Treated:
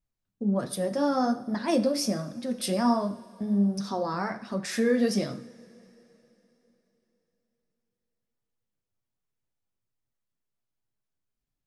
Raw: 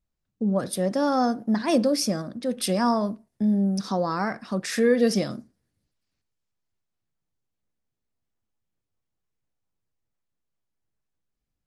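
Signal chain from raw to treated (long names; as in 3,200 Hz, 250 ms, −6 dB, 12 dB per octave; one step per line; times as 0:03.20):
coupled-rooms reverb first 0.56 s, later 3.7 s, from −18 dB, DRR 9.5 dB
flanger 1.3 Hz, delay 6.2 ms, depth 5.8 ms, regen −37%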